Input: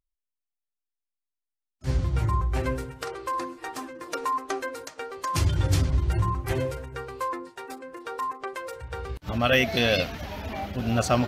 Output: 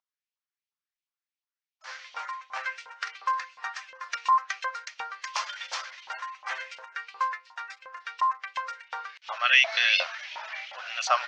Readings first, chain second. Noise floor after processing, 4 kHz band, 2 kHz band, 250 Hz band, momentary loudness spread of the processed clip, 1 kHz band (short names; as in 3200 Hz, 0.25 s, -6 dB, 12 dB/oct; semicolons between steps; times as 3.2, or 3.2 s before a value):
under -85 dBFS, +3.0 dB, +4.5 dB, under -40 dB, 18 LU, +1.5 dB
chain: elliptic band-pass 550–6000 Hz, stop band 40 dB; LFO high-pass saw up 2.8 Hz 880–3000 Hz